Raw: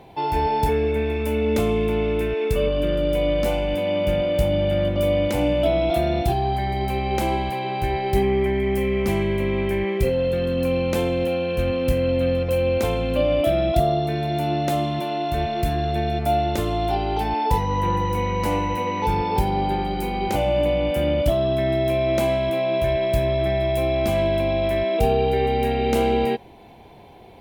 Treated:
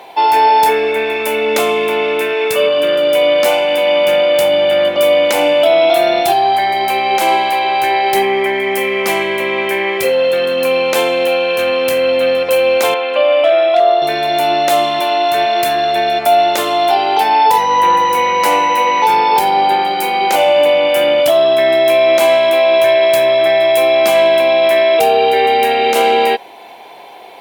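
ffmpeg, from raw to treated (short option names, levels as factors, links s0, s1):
-filter_complex "[0:a]asettb=1/sr,asplit=3[s0][s1][s2];[s0]atrim=end=12.944[s3];[s1]atrim=start=12.94:end=14.02,asetpts=PTS-STARTPTS,afade=t=in:d=0.004:c=qsin,afade=t=out:st=1.076:d=0.004:c=qsin,highpass=450,lowpass=3000[s4];[s2]atrim=start=14.016[s5];[s3][s4]acrossfade=d=0.004:c1=hsin:c2=qsin[s6];[s6][s5]acrossfade=d=0.004:c1=qsin:c2=hsin,highpass=660,alimiter=level_in=6.68:limit=0.891:release=50:level=0:latency=1,volume=0.841"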